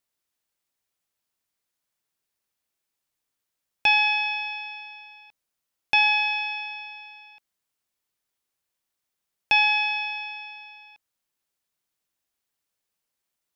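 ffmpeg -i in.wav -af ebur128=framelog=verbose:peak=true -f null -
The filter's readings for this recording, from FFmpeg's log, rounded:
Integrated loudness:
  I:         -21.8 LUFS
  Threshold: -34.0 LUFS
Loudness range:
  LRA:         9.1 LU
  Threshold: -46.5 LUFS
  LRA low:   -32.6 LUFS
  LRA high:  -23.5 LUFS
True peak:
  Peak:       -9.1 dBFS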